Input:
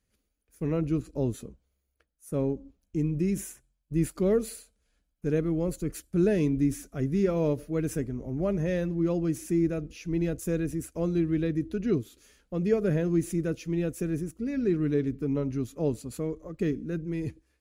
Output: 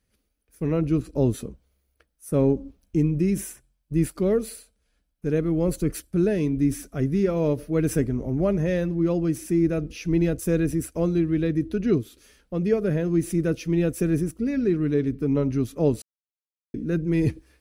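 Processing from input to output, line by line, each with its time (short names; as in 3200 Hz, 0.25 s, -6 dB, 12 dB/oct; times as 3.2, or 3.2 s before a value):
16.02–16.74 mute
whole clip: notch 6900 Hz, Q 7.8; vocal rider 0.5 s; gain +5 dB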